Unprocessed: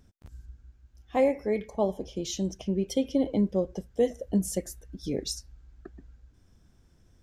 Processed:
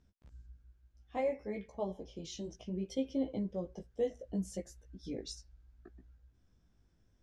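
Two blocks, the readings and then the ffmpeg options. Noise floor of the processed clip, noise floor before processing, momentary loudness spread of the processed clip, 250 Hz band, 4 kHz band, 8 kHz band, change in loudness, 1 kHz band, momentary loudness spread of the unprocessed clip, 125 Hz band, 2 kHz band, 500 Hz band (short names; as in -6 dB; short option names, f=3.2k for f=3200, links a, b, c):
-71 dBFS, -62 dBFS, 16 LU, -10.0 dB, -10.5 dB, -13.5 dB, -10.0 dB, -9.5 dB, 10 LU, -10.0 dB, -9.5 dB, -10.0 dB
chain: -af "lowpass=6.7k,flanger=delay=15:depth=3.8:speed=0.64,volume=-7dB"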